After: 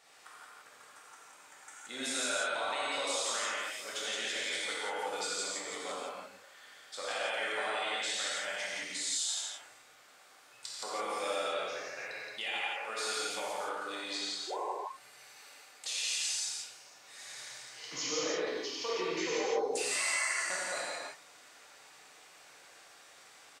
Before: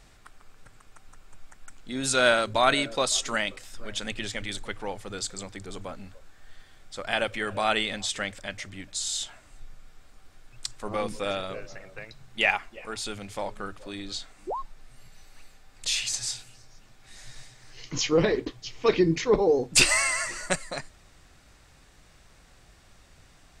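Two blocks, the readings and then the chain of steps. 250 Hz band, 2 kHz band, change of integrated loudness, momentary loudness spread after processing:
-13.5 dB, -6.5 dB, -7.5 dB, 22 LU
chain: high-pass 510 Hz 12 dB/octave; peak limiter -18 dBFS, peak gain reduction 11.5 dB; compression 6:1, threshold -34 dBFS, peak gain reduction 11.5 dB; on a send: loudspeakers at several distances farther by 30 m -9 dB, 59 m -2 dB; on the sum: gated-style reverb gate 190 ms flat, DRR -5.5 dB; trim -5 dB

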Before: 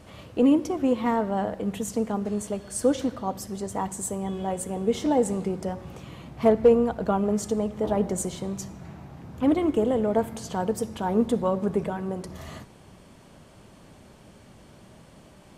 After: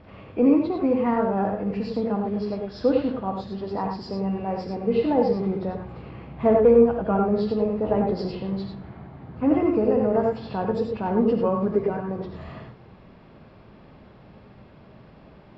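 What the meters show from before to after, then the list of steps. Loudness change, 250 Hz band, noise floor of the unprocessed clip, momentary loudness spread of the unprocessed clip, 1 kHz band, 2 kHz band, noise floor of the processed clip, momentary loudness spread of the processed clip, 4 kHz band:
+2.5 dB, +2.0 dB, -52 dBFS, 15 LU, +2.0 dB, +0.5 dB, -50 dBFS, 16 LU, -2.0 dB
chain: knee-point frequency compression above 1.9 kHz 1.5:1; boxcar filter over 7 samples; gated-style reverb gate 120 ms rising, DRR 2 dB

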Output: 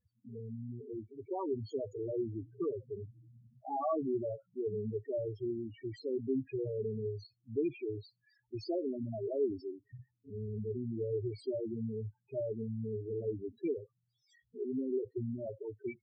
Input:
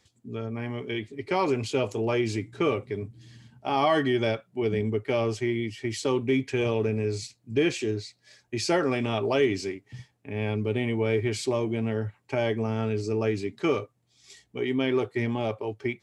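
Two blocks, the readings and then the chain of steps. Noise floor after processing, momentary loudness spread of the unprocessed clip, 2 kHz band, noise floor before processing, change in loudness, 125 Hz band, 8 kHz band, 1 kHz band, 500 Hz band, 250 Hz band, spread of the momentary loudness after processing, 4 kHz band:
-82 dBFS, 11 LU, -28.5 dB, -70 dBFS, -10.5 dB, -11.0 dB, under -30 dB, -13.5 dB, -9.5 dB, -10.0 dB, 11 LU, -24.0 dB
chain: loudest bins only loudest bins 4; trim -8 dB

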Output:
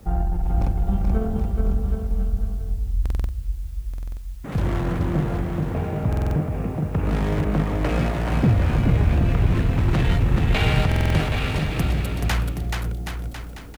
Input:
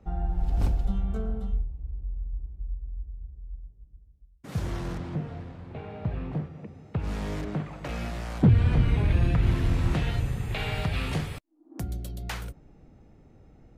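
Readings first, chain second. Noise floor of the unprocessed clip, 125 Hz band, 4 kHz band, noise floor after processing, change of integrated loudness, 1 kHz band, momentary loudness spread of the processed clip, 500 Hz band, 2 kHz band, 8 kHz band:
-56 dBFS, +6.5 dB, +8.0 dB, -33 dBFS, +6.0 dB, +9.5 dB, 10 LU, +9.5 dB, +8.5 dB, no reading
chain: local Wiener filter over 9 samples; in parallel at +1 dB: compressor with a negative ratio -28 dBFS, ratio -0.5; on the sum: Chebyshev shaper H 5 -31 dB, 6 -25 dB, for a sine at -9 dBFS; word length cut 10-bit, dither triangular; bouncing-ball echo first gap 430 ms, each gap 0.8×, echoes 5; buffer glitch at 3.01/3.89/6.08/10.87 s, samples 2048, times 5

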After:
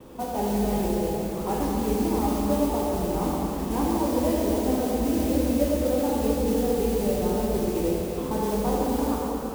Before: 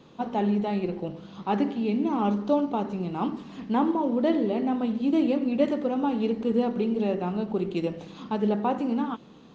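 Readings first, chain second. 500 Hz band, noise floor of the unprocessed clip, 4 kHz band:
+3.0 dB, -50 dBFS, +4.0 dB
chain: octave divider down 2 oct, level -2 dB; peaking EQ 510 Hz +6.5 dB 1.5 oct; compression 2.5:1, threshold -34 dBFS, peak gain reduction 14.5 dB; gate with hold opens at -48 dBFS; low-pass 2.4 kHz; modulation noise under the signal 15 dB; plate-style reverb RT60 3.8 s, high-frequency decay 0.8×, DRR -5.5 dB; trim +1 dB

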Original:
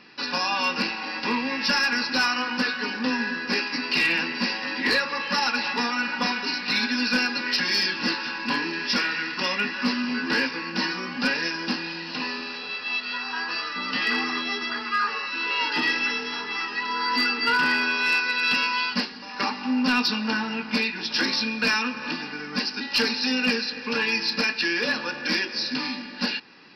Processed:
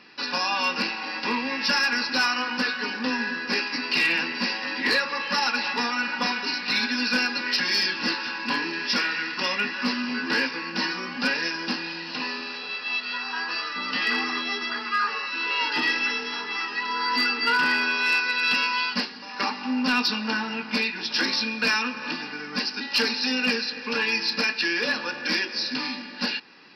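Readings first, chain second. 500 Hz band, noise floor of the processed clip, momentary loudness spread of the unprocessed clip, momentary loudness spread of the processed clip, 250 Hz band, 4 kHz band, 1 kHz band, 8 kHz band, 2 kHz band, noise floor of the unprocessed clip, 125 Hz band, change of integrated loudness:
-1.0 dB, -37 dBFS, 7 LU, 7 LU, -2.0 dB, 0.0 dB, 0.0 dB, 0.0 dB, 0.0 dB, -36 dBFS, -3.0 dB, 0.0 dB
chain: bass shelf 180 Hz -6.5 dB

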